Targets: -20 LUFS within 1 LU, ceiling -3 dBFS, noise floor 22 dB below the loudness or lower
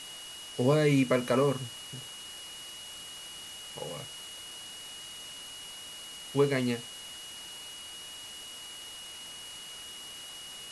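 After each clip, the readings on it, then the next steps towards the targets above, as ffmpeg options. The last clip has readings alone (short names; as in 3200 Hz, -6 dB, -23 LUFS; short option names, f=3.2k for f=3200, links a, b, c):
steady tone 2900 Hz; tone level -44 dBFS; noise floor -45 dBFS; noise floor target -56 dBFS; loudness -34.0 LUFS; peak -13.0 dBFS; loudness target -20.0 LUFS
-> -af "bandreject=f=2.9k:w=30"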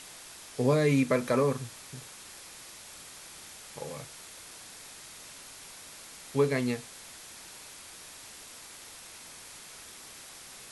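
steady tone none; noise floor -48 dBFS; noise floor target -52 dBFS
-> -af "afftdn=nr=6:nf=-48"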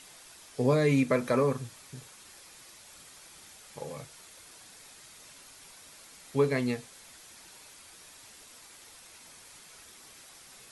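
noise floor -53 dBFS; loudness -29.0 LUFS; peak -13.0 dBFS; loudness target -20.0 LUFS
-> -af "volume=9dB"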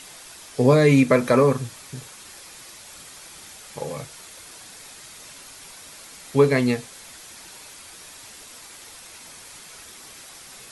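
loudness -20.0 LUFS; peak -4.0 dBFS; noise floor -44 dBFS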